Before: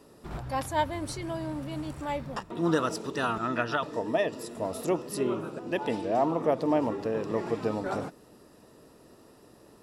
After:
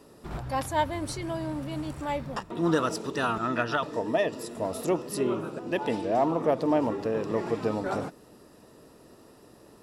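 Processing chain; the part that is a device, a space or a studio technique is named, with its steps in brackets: parallel distortion (in parallel at -13.5 dB: hard clipper -25 dBFS, distortion -11 dB)

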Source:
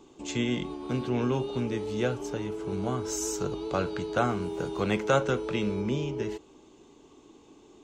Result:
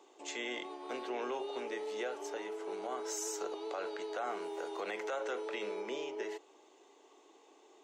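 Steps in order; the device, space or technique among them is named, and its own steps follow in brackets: laptop speaker (high-pass 390 Hz 24 dB/octave; peaking EQ 730 Hz +5.5 dB 0.59 oct; peaking EQ 1.9 kHz +7 dB 0.32 oct; peak limiter -24.5 dBFS, peak gain reduction 13.5 dB); trim -4.5 dB

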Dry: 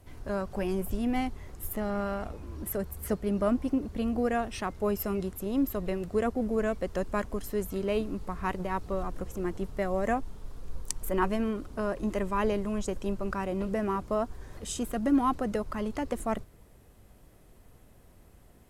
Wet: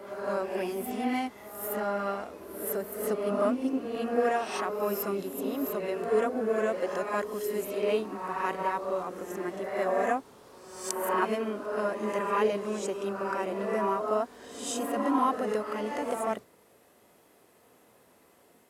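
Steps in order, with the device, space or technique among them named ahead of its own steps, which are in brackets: ghost voice (reverse; reverberation RT60 1.1 s, pre-delay 14 ms, DRR -0.5 dB; reverse; high-pass 310 Hz 12 dB/octave)

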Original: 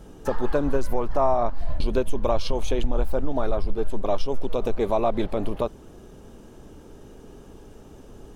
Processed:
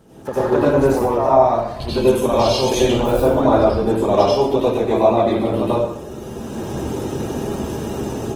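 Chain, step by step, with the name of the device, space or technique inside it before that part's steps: 1.33–3.31 s: treble shelf 2.5 kHz +5 dB; far-field microphone of a smart speaker (reverberation RT60 0.70 s, pre-delay 78 ms, DRR -7.5 dB; high-pass 97 Hz 12 dB/octave; level rider gain up to 16 dB; trim -1.5 dB; Opus 20 kbps 48 kHz)

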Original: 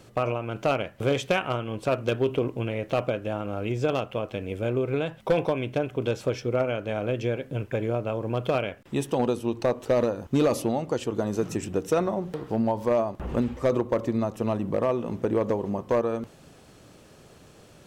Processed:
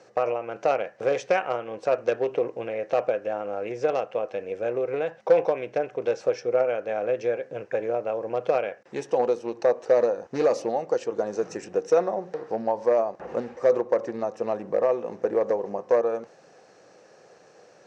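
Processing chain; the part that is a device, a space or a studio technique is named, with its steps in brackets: full-range speaker at full volume (loudspeaker Doppler distortion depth 0.17 ms; cabinet simulation 260–6800 Hz, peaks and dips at 260 Hz -7 dB, 500 Hz +9 dB, 760 Hz +7 dB, 1.7 kHz +6 dB, 3.3 kHz -9 dB, 5.8 kHz +5 dB); trim -3 dB

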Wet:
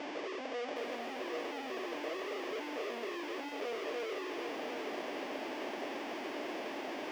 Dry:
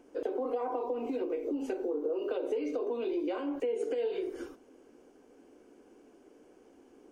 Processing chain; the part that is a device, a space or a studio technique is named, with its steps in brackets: inverse Chebyshev low-pass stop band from 1.1 kHz, stop band 60 dB; home computer beeper (one-bit comparator; cabinet simulation 540–4800 Hz, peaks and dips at 610 Hz +9 dB, 950 Hz -6 dB, 1.4 kHz -9 dB, 4 kHz -10 dB); bit-crushed delay 760 ms, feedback 35%, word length 11-bit, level -5.5 dB; trim +8 dB

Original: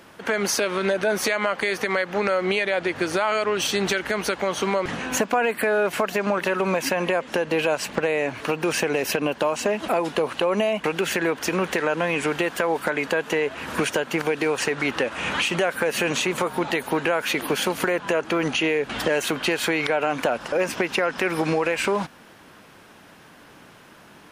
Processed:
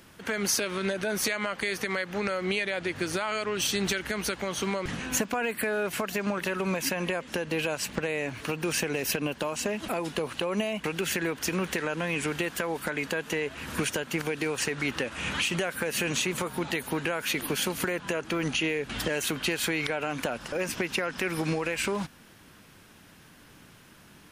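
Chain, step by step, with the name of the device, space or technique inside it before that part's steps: smiley-face EQ (bass shelf 130 Hz +9 dB; peaking EQ 700 Hz -6 dB 2 oct; treble shelf 6.1 kHz +6 dB); trim -4.5 dB

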